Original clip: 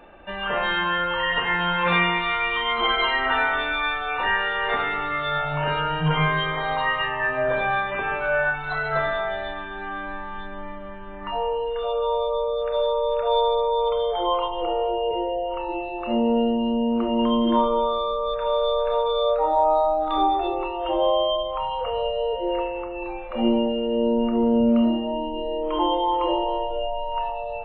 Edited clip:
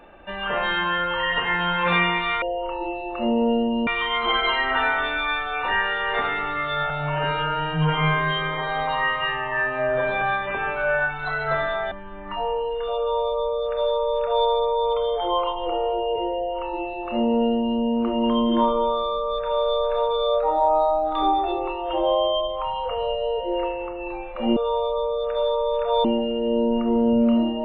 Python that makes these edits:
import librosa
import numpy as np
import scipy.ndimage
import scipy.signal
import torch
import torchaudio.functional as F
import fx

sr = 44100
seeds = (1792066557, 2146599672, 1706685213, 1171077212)

y = fx.edit(x, sr, fx.stretch_span(start_s=5.45, length_s=2.21, factor=1.5),
    fx.cut(start_s=9.36, length_s=1.51),
    fx.duplicate(start_s=11.94, length_s=1.48, to_s=23.52),
    fx.duplicate(start_s=15.3, length_s=1.45, to_s=2.42), tone=tone)